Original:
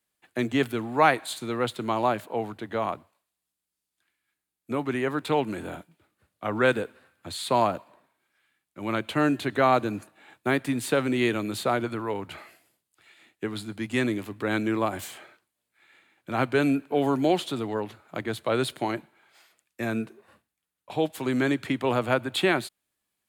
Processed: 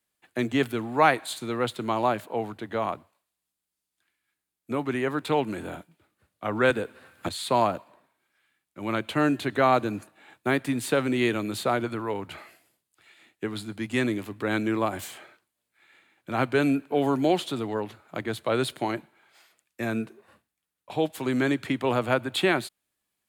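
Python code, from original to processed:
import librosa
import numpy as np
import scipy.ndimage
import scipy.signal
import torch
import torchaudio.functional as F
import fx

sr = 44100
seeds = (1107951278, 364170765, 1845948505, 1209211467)

y = fx.band_squash(x, sr, depth_pct=100, at=(6.7, 7.29))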